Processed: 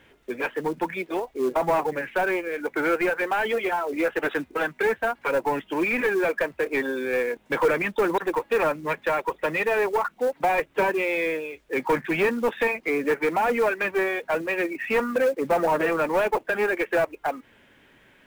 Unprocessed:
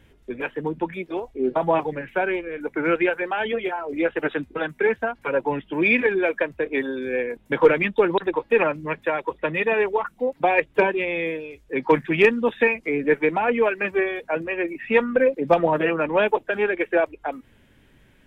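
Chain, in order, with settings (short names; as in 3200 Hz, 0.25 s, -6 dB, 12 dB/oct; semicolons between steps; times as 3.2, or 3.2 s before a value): overdrive pedal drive 21 dB, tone 2500 Hz, clips at -5 dBFS; treble ducked by the level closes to 2200 Hz, closed at -11.5 dBFS; companded quantiser 6-bit; gain -8 dB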